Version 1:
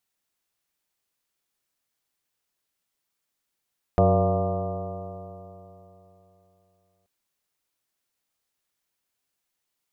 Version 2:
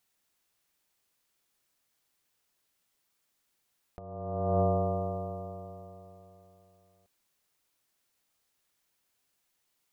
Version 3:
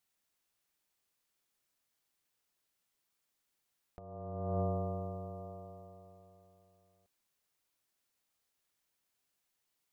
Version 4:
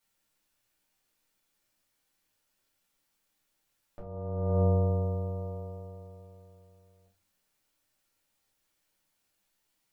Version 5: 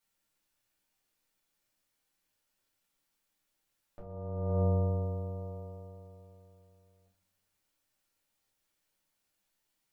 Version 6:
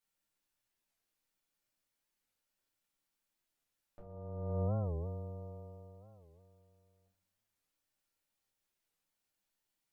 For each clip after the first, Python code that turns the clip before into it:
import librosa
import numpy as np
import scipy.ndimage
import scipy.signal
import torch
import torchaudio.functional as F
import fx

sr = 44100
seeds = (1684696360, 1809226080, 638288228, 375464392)

y1 = fx.over_compress(x, sr, threshold_db=-28.0, ratio=-0.5)
y1 = F.gain(torch.from_numpy(y1), -1.0).numpy()
y2 = fx.dynamic_eq(y1, sr, hz=730.0, q=0.74, threshold_db=-39.0, ratio=4.0, max_db=-4)
y2 = F.gain(torch.from_numpy(y2), -5.5).numpy()
y3 = fx.room_shoebox(y2, sr, seeds[0], volume_m3=130.0, walls='furnished', distance_m=2.4)
y4 = fx.echo_feedback(y3, sr, ms=119, feedback_pct=59, wet_db=-17.0)
y4 = F.gain(torch.from_numpy(y4), -3.5).numpy()
y5 = fx.record_warp(y4, sr, rpm=45.0, depth_cents=250.0)
y5 = F.gain(torch.from_numpy(y5), -6.0).numpy()